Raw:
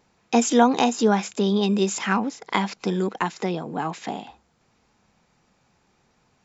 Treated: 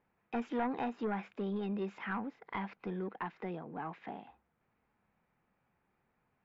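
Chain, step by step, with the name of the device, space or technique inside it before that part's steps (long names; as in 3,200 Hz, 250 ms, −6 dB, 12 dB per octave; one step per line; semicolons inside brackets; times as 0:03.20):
overdriven synthesiser ladder filter (soft clipping −15.5 dBFS, distortion −11 dB; transistor ladder low-pass 2,700 Hz, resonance 25%)
level −7.5 dB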